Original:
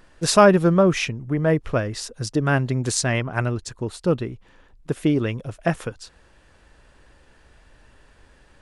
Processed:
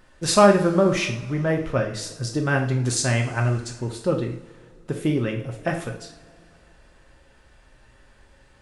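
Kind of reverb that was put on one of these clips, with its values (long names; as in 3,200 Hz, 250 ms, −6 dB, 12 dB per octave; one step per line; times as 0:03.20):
coupled-rooms reverb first 0.47 s, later 2.9 s, from −22 dB, DRR 1.5 dB
level −3 dB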